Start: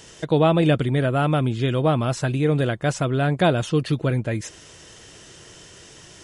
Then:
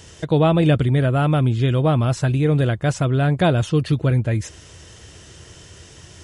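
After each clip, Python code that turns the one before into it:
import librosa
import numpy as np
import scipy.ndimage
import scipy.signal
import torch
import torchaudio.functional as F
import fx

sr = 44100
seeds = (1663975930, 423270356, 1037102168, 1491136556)

y = fx.peak_eq(x, sr, hz=77.0, db=13.5, octaves=1.2)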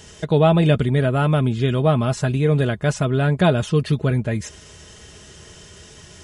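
y = x + 0.44 * np.pad(x, (int(4.8 * sr / 1000.0), 0))[:len(x)]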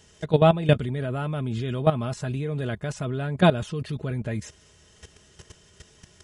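y = fx.level_steps(x, sr, step_db=14)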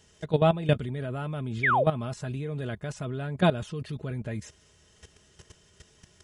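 y = fx.spec_paint(x, sr, seeds[0], shape='fall', start_s=1.63, length_s=0.21, low_hz=470.0, high_hz=2400.0, level_db=-18.0)
y = F.gain(torch.from_numpy(y), -4.5).numpy()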